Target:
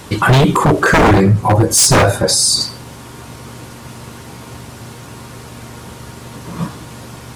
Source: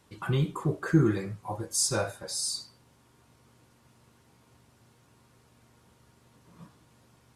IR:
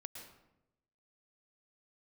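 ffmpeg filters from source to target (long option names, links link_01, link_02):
-filter_complex "[0:a]asettb=1/sr,asplit=3[link_01][link_02][link_03];[link_01]atrim=end=1.134[link_04];[link_02]atrim=start=1.13:end=2.61,asetpts=PTS-STARTPTS,afade=type=in:duration=0.004:curve=qsin,afade=type=out:start_time=1.476:duration=0.004:curve=qsin,tiltshelf=frequency=690:gain=4.5[link_05];[link_03]atrim=start=2.606[link_06];[link_04][link_05]acrossfade=duration=0.004:curve1=hsin:curve2=qsin[link_07];[link_07][link_06]acrossfade=duration=0.004:curve1=qsin:curve2=hsin,aeval=exprs='0.0501*(abs(mod(val(0)/0.0501+3,4)-2)-1)':channel_layout=same,alimiter=level_in=31.5dB:limit=-1dB:release=50:level=0:latency=1,volume=-3dB"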